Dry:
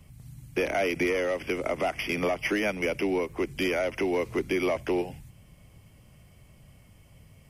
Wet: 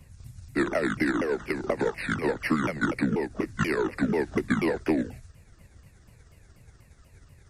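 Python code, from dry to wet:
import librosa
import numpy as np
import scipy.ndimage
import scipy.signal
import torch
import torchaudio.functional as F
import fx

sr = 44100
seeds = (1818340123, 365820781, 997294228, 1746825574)

y = fx.pitch_ramps(x, sr, semitones=-10.5, every_ms=243)
y = fx.transient(y, sr, attack_db=4, sustain_db=0)
y = fx.notch(y, sr, hz=3100.0, q=12.0)
y = y * 10.0 ** (1.0 / 20.0)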